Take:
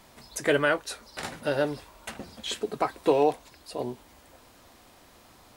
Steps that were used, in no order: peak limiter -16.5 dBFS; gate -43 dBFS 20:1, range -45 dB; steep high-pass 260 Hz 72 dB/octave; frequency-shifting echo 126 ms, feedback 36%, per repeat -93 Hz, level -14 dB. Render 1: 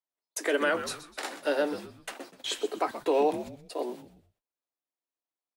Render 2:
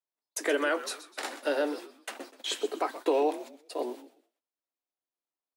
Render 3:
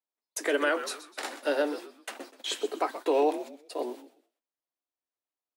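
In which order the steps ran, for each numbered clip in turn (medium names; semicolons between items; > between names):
gate > steep high-pass > frequency-shifting echo > peak limiter; gate > peak limiter > frequency-shifting echo > steep high-pass; gate > frequency-shifting echo > steep high-pass > peak limiter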